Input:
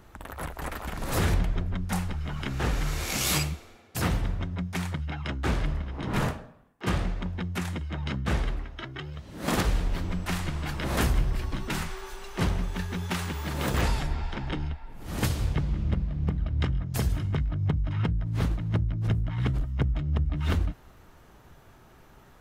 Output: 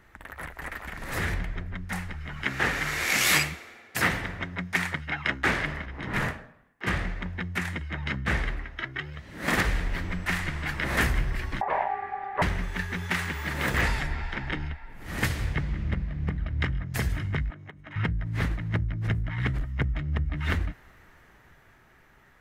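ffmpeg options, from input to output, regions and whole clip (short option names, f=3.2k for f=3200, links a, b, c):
-filter_complex "[0:a]asettb=1/sr,asplit=3[a][b][c];[a]atrim=end=2.444[d];[b]atrim=start=2.44:end=5.86,asetpts=PTS-STARTPTS,afade=t=in:d=0.004:c=qsin,afade=t=out:st=3.416:d=0.004:c=qsin,acontrast=79,highpass=f=240:p=1[e];[c]atrim=start=5.856[f];[d][e]acrossfade=d=0.004:c1=hsin:c2=qsin[g];[g][f]acrossfade=d=0.004:c1=qsin:c2=hsin,asettb=1/sr,asplit=3[h][i][j];[h]atrim=end=11.614[k];[i]atrim=start=11.61:end=12.42,asetpts=PTS-STARTPTS,afade=t=in:d=0.004:c=qsin,afade=t=out:st=0.806:d=0.004:c=qsin,lowpass=1.9k,tiltshelf=f=870:g=9,aeval=exprs='val(0)*sin(2*PI*790*n/s)':c=same[l];[j]atrim=start=12.416[m];[k][l]acrossfade=d=0.004:c1=hsin:c2=qsin[n];[n][m]acrossfade=d=0.004:c1=qsin:c2=hsin,asettb=1/sr,asplit=3[o][p][q];[o]atrim=end=17.504[r];[p]atrim=start=17.5:end=17.96,asetpts=PTS-STARTPTS,afade=t=in:d=0.004:c=qsin,afade=t=out:st=0.456:d=0.004:c=qsin,highpass=260,equalizer=f=4.9k:w=2.9:g=-8.5,acompressor=threshold=-40dB:ratio=16:attack=3.2:release=140:knee=1:detection=peak[s];[q]atrim=start=17.956[t];[r][s]acrossfade=d=0.004:c1=hsin:c2=qsin[u];[u][t]acrossfade=d=0.004:c1=qsin:c2=hsin,equalizer=f=1.9k:t=o:w=0.77:g=13,dynaudnorm=f=260:g=13:m=5dB,volume=-6.5dB"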